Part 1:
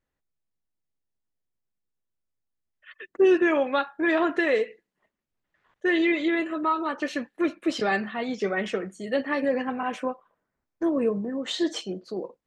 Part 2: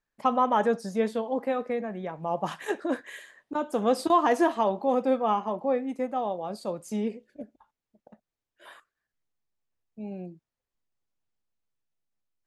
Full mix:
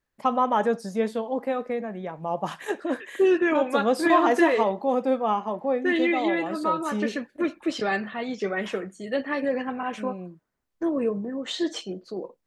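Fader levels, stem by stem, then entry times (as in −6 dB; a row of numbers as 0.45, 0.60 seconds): −1.0, +1.0 decibels; 0.00, 0.00 seconds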